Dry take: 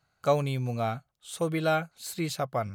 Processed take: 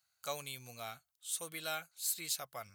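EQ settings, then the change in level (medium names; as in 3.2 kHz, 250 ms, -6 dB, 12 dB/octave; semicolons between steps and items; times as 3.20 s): pre-emphasis filter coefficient 0.97; peaking EQ 76 Hz +11.5 dB 0.51 oct; +3.0 dB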